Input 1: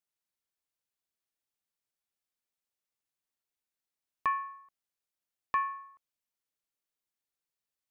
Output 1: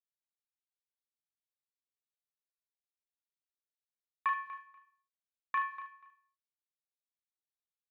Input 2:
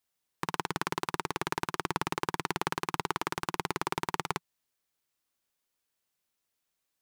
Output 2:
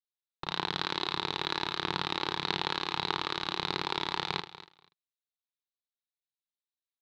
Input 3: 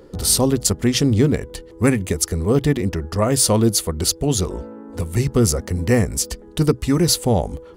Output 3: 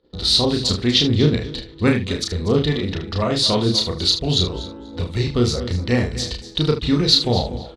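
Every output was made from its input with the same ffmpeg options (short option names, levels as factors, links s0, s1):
-filter_complex "[0:a]agate=range=0.0708:threshold=0.00794:ratio=16:detection=peak,lowpass=f=3900:t=q:w=6.6,asplit=2[s0][s1];[s1]aecho=0:1:242|484:0.178|0.0302[s2];[s0][s2]amix=inputs=2:normalize=0,aphaser=in_gain=1:out_gain=1:delay=3.6:decay=0.21:speed=1.6:type=sinusoidal,asplit=2[s3][s4];[s4]aecho=0:1:33|76:0.668|0.282[s5];[s3][s5]amix=inputs=2:normalize=0,volume=0.631"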